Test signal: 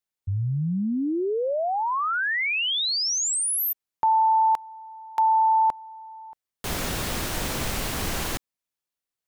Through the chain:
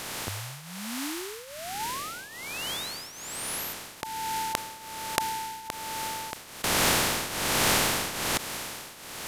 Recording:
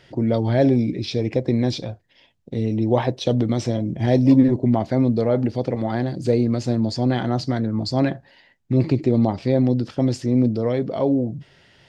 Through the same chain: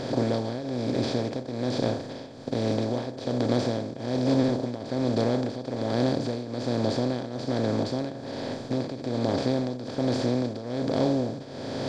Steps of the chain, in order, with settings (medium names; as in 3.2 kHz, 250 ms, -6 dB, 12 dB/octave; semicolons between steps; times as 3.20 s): spectral levelling over time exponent 0.2; tremolo triangle 1.2 Hz, depth 80%; trim -12 dB